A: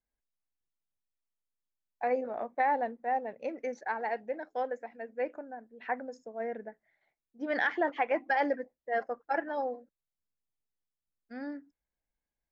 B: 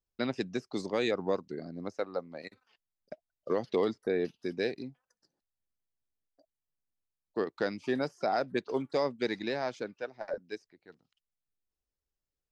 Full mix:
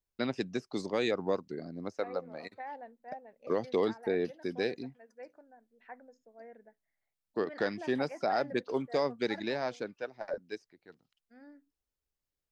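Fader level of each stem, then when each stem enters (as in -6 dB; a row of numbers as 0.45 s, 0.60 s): -15.0 dB, -0.5 dB; 0.00 s, 0.00 s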